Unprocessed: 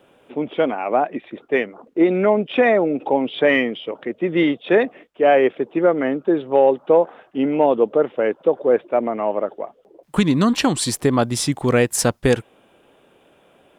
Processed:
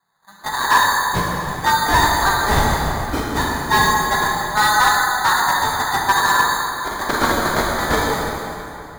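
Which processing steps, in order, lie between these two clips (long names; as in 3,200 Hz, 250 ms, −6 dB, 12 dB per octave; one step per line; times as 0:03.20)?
gliding playback speed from 133% → 174%
Chebyshev band-stop filter 170–990 Hz, order 3
RIAA equalisation recording
low-pass that shuts in the quiet parts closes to 760 Hz, open at −14 dBFS
dynamic equaliser 830 Hz, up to +7 dB, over −29 dBFS, Q 0.78
automatic gain control gain up to 11.5 dB
in parallel at −9 dB: wrap-around overflow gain 12.5 dB
on the sum: decimation without filtering 16×
on a send: delay that swaps between a low-pass and a high-pass 141 ms, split 2,100 Hz, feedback 59%, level −12.5 dB
on the sum: pitch vibrato 2.6 Hz 6.4 cents
dense smooth reverb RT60 3.1 s, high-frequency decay 0.7×, DRR −3.5 dB
slew-rate limiting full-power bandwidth 1,300 Hz
level −5.5 dB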